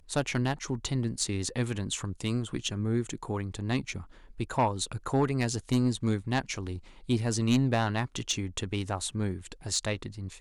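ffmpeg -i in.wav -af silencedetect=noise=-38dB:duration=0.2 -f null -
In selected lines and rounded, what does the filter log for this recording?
silence_start: 4.02
silence_end: 4.40 | silence_duration: 0.37
silence_start: 6.78
silence_end: 7.09 | silence_duration: 0.31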